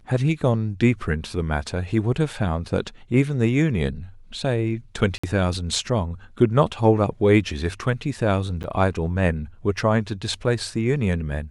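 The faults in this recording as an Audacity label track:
5.180000	5.240000	gap 55 ms
8.630000	8.640000	gap 9.6 ms

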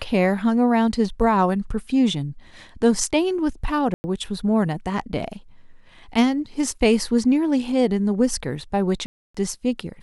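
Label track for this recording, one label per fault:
3.940000	4.040000	gap 0.1 s
9.060000	9.350000	gap 0.285 s

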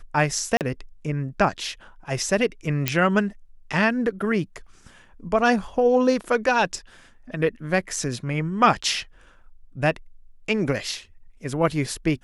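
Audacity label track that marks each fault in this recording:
0.570000	0.610000	gap 38 ms
2.880000	2.880000	pop -4 dBFS

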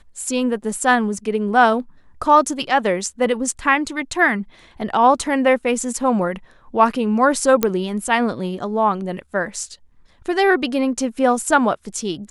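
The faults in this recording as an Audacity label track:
7.630000	7.630000	pop -3 dBFS

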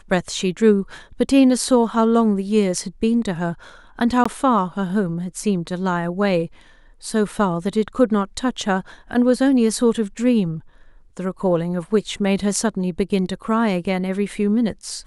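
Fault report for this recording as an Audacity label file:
4.240000	4.250000	gap 15 ms

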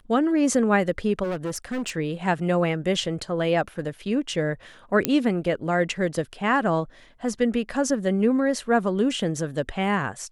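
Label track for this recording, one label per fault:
1.230000	1.960000	clipped -24.5 dBFS
5.050000	5.050000	pop -3 dBFS

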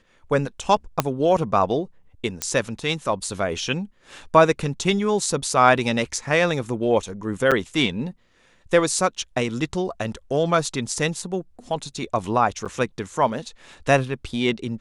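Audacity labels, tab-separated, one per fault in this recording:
1.000000	1.000000	pop -4 dBFS
2.420000	2.420000	pop -7 dBFS
7.510000	7.520000	gap 6.4 ms
12.650000	12.660000	gap 7 ms

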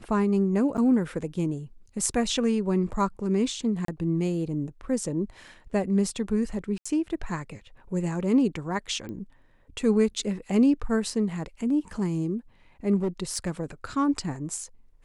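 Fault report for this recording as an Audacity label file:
0.770000	0.780000	gap 8.5 ms
3.850000	3.880000	gap 33 ms
6.780000	6.860000	gap 75 ms
9.090000	9.090000	pop -27 dBFS
12.960000	13.500000	clipped -22 dBFS

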